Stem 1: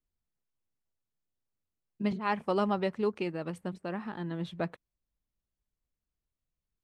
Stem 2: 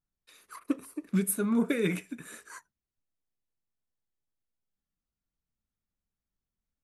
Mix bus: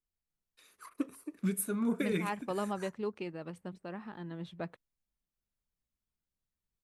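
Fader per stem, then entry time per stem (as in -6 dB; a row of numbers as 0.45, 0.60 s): -6.5, -5.0 dB; 0.00, 0.30 s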